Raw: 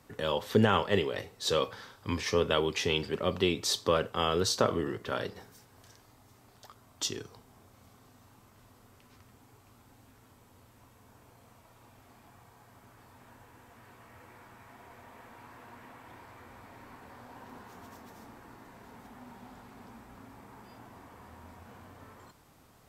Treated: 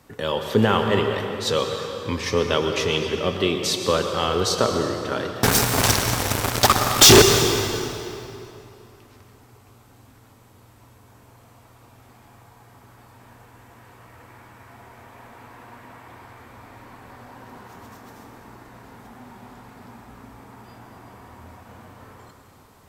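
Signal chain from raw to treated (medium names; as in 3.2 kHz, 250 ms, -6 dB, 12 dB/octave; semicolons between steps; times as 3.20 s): 5.43–7.22 s: fuzz box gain 54 dB, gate -56 dBFS; reverberation RT60 2.8 s, pre-delay 96 ms, DRR 4.5 dB; trim +5.5 dB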